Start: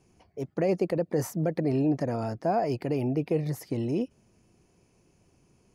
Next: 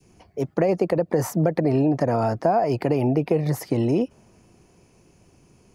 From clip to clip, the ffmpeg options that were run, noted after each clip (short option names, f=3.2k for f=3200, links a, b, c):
-filter_complex "[0:a]adynamicequalizer=threshold=0.01:dfrequency=910:dqfactor=0.72:tfrequency=910:tqfactor=0.72:attack=5:release=100:ratio=0.375:range=3.5:mode=boostabove:tftype=bell,acrossover=split=120[a][b];[b]acompressor=threshold=-26dB:ratio=4[c];[a][c]amix=inputs=2:normalize=0,volume=8dB"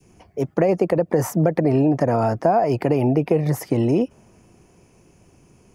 -af "equalizer=f=4.2k:t=o:w=0.45:g=-6,volume=2.5dB"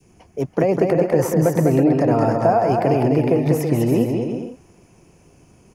-af "aecho=1:1:200|330|414.5|469.4|505.1:0.631|0.398|0.251|0.158|0.1"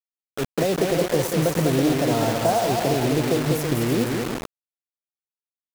-af "acrusher=bits=3:mix=0:aa=0.000001,volume=-4.5dB"